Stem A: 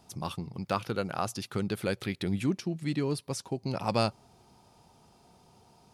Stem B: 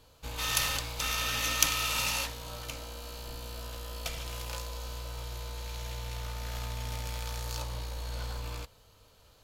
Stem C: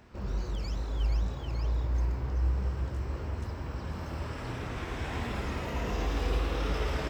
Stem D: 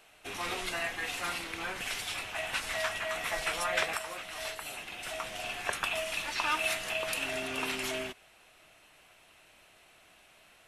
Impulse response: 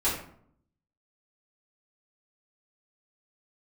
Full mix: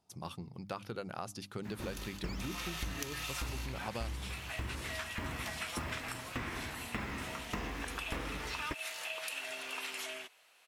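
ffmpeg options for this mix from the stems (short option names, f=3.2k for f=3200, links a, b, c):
-filter_complex "[0:a]agate=range=-10dB:threshold=-56dB:ratio=16:detection=peak,bandreject=f=50:t=h:w=6,bandreject=f=100:t=h:w=6,bandreject=f=150:t=h:w=6,bandreject=f=200:t=h:w=6,bandreject=f=250:t=h:w=6,bandreject=f=300:t=h:w=6,volume=-7dB[a];[1:a]highpass=690,adelay=1400,volume=-8.5dB,afade=t=in:st=2.22:d=0.28:silence=0.316228[b];[2:a]equalizer=f=125:t=o:w=1:g=4,equalizer=f=250:t=o:w=1:g=9,equalizer=f=1k:t=o:w=1:g=6,equalizer=f=2k:t=o:w=1:g=11,crystalizer=i=1.5:c=0,aeval=exprs='val(0)*pow(10,-25*if(lt(mod(1.7*n/s,1),2*abs(1.7)/1000),1-mod(1.7*n/s,1)/(2*abs(1.7)/1000),(mod(1.7*n/s,1)-2*abs(1.7)/1000)/(1-2*abs(1.7)/1000))/20)':c=same,adelay=1650,volume=0.5dB[c];[3:a]highpass=f=970:p=1,adelay=2150,volume=-4.5dB[d];[a][b][c][d]amix=inputs=4:normalize=0,acompressor=threshold=-35dB:ratio=10"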